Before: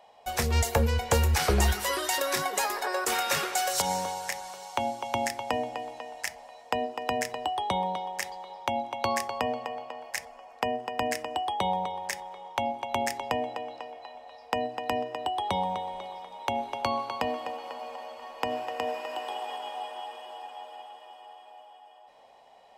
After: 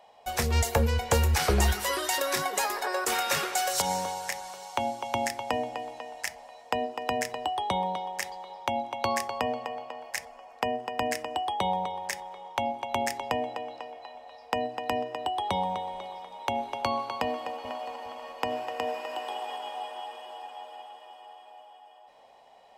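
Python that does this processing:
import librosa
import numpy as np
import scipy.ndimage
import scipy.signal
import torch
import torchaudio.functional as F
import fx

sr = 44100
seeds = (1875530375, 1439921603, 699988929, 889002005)

y = fx.echo_throw(x, sr, start_s=17.23, length_s=0.68, ms=410, feedback_pct=40, wet_db=-7.5)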